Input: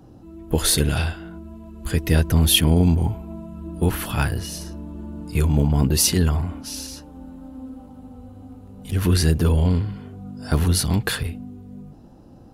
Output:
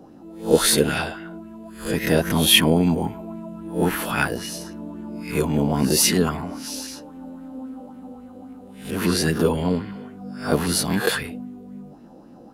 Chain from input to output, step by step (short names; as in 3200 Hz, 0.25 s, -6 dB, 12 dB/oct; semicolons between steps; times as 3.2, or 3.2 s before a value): spectral swells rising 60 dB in 0.38 s; resonant low shelf 140 Hz -11.5 dB, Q 1.5; LFO bell 3.7 Hz 480–2200 Hz +10 dB; gain -1.5 dB